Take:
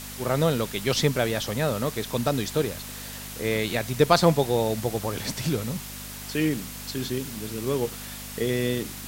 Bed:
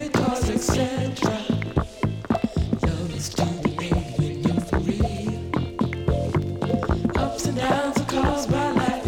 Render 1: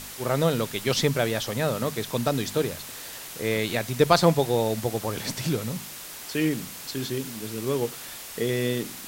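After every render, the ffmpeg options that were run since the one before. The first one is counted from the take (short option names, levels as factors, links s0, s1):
-af "bandreject=f=50:t=h:w=4,bandreject=f=100:t=h:w=4,bandreject=f=150:t=h:w=4,bandreject=f=200:t=h:w=4,bandreject=f=250:t=h:w=4"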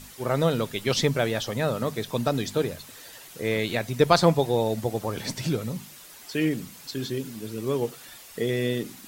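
-af "afftdn=nr=9:nf=-40"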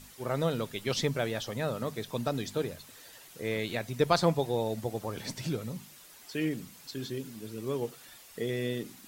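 -af "volume=0.473"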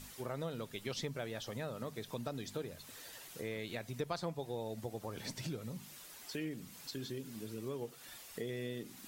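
-af "acompressor=threshold=0.00794:ratio=2.5"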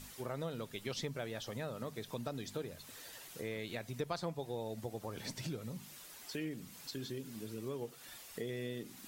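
-af anull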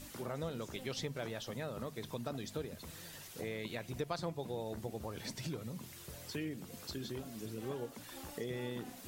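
-filter_complex "[1:a]volume=0.0335[s0];[0:a][s0]amix=inputs=2:normalize=0"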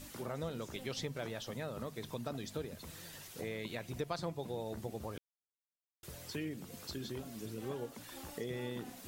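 -filter_complex "[0:a]asplit=3[s0][s1][s2];[s0]atrim=end=5.18,asetpts=PTS-STARTPTS,afade=t=out:st=5.176:d=0.004:c=hsin[s3];[s1]atrim=start=5.18:end=6.03,asetpts=PTS-STARTPTS,volume=0[s4];[s2]atrim=start=6.03,asetpts=PTS-STARTPTS,afade=t=in:d=0.004:c=hsin[s5];[s3][s4][s5]concat=n=3:v=0:a=1"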